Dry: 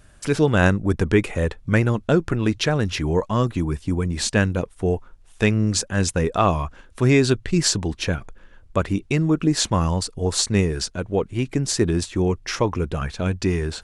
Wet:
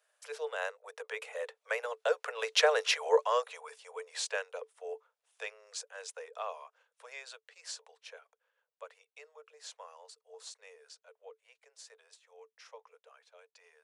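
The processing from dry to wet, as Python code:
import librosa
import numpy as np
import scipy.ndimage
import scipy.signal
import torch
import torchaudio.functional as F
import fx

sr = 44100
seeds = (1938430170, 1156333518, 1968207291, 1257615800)

y = fx.doppler_pass(x, sr, speed_mps=6, closest_m=2.4, pass_at_s=2.86)
y = scipy.signal.sosfilt(scipy.signal.cheby1(10, 1.0, 440.0, 'highpass', fs=sr, output='sos'), y)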